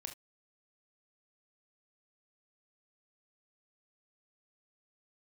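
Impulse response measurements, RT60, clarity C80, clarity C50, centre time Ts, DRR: no single decay rate, 22.0 dB, 11.0 dB, 14 ms, 4.5 dB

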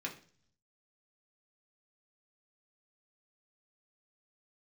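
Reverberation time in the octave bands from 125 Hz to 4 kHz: 1.0 s, 0.70 s, 0.50 s, 0.40 s, 0.45 s, 0.60 s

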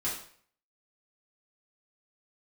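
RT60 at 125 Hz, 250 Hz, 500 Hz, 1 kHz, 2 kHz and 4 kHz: 0.55 s, 0.50 s, 0.55 s, 0.50 s, 0.50 s, 0.50 s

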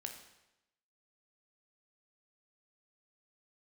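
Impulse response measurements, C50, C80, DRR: 7.0 dB, 9.5 dB, 4.0 dB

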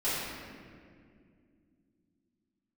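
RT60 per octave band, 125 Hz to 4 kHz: 3.6 s, 3.9 s, 2.7 s, 1.8 s, 1.9 s, 1.3 s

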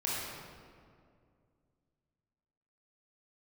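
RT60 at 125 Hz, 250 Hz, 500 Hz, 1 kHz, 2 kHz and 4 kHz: 3.1 s, 2.8 s, 2.5 s, 2.0 s, 1.6 s, 1.2 s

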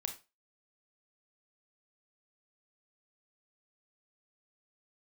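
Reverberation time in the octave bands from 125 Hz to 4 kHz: 0.25 s, 0.25 s, 0.30 s, 0.25 s, 0.25 s, 0.25 s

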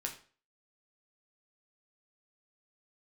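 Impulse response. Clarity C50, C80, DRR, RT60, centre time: 10.0 dB, 14.5 dB, 1.0 dB, 0.40 s, 15 ms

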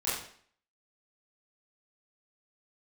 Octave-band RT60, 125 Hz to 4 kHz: 0.50 s, 0.55 s, 0.55 s, 0.55 s, 0.55 s, 0.50 s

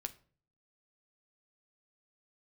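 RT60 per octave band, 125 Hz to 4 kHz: 0.70 s, 0.60 s, 0.50 s, 0.40 s, 0.35 s, 0.30 s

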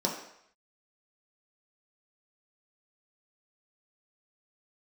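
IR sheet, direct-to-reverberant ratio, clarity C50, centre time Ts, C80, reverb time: -2.5 dB, 5.5 dB, 33 ms, 8.5 dB, 0.70 s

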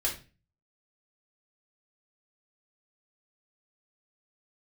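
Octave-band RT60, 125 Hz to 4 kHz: 0.60 s, 0.50 s, 0.35 s, 0.30 s, 0.35 s, 0.30 s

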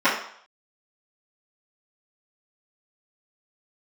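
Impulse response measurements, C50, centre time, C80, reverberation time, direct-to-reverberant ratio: 5.0 dB, 36 ms, 9.0 dB, 0.60 s, -16.0 dB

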